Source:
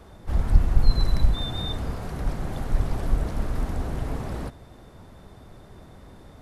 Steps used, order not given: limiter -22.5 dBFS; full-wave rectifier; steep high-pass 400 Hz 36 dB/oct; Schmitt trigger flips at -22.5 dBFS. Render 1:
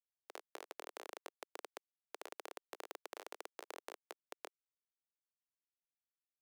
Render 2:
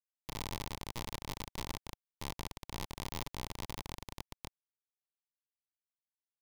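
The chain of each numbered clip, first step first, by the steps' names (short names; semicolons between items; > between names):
limiter > Schmitt trigger > full-wave rectifier > steep high-pass; Schmitt trigger > limiter > steep high-pass > full-wave rectifier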